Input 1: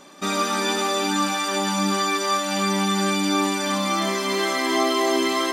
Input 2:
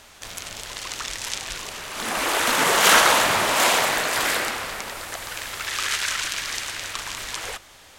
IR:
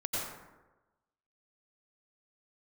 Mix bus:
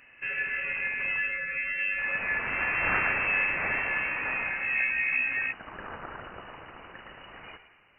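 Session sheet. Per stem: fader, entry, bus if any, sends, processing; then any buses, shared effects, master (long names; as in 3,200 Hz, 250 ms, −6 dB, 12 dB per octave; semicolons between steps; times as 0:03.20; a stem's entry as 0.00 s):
−0.5 dB, 0.00 s, no send, flanger 0.63 Hz, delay 7.8 ms, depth 8.3 ms, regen −69%; phaser with its sweep stopped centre 520 Hz, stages 6
−13.5 dB, 0.00 s, muted 0:01.21–0:01.98, send −14 dB, no processing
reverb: on, RT60 1.1 s, pre-delay 82 ms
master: voice inversion scrambler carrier 2,900 Hz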